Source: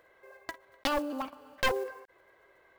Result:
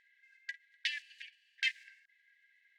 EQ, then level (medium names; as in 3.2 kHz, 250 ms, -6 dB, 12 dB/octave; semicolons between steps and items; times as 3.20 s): dynamic bell 2.2 kHz, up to +4 dB, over -49 dBFS, Q 1.3; brick-wall FIR high-pass 1.6 kHz; distance through air 110 m; 0.0 dB